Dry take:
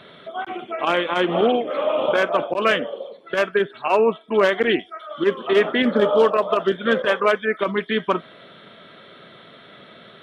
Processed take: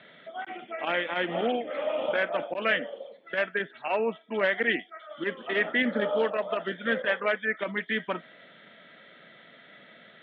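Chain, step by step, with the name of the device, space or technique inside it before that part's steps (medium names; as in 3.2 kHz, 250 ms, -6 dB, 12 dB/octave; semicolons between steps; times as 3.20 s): kitchen radio (cabinet simulation 170–3600 Hz, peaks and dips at 390 Hz -8 dB, 1.1 kHz -9 dB, 1.9 kHz +8 dB); trim -7 dB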